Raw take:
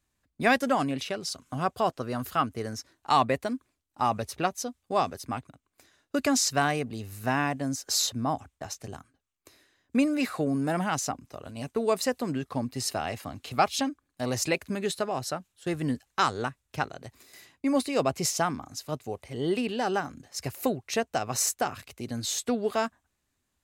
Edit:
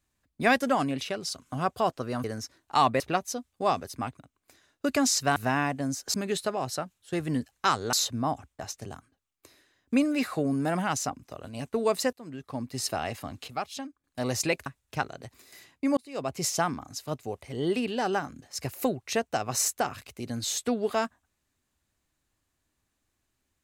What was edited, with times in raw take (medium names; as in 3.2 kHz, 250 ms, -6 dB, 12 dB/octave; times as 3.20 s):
2.24–2.59 s: delete
3.35–4.30 s: delete
6.66–7.17 s: delete
12.15–12.89 s: fade in, from -21 dB
13.50–14.06 s: gain -9.5 dB
14.68–16.47 s: move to 7.95 s
17.78–18.34 s: fade in